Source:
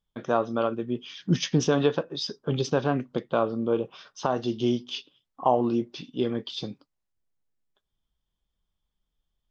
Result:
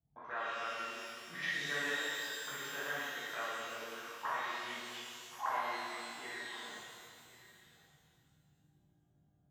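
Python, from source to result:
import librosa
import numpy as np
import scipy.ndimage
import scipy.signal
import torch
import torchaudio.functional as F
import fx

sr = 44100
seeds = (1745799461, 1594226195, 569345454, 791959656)

y = fx.dmg_noise_band(x, sr, seeds[0], low_hz=37.0, high_hz=160.0, level_db=-47.0)
y = fx.auto_wah(y, sr, base_hz=670.0, top_hz=1900.0, q=18.0, full_db=-26.5, direction='up')
y = y + 10.0 ** (-18.0 / 20.0) * np.pad(y, (int(1081 * sr / 1000.0), 0))[:len(y)]
y = fx.rev_shimmer(y, sr, seeds[1], rt60_s=2.2, semitones=12, shimmer_db=-8, drr_db=-10.5)
y = F.gain(torch.from_numpy(y), 5.0).numpy()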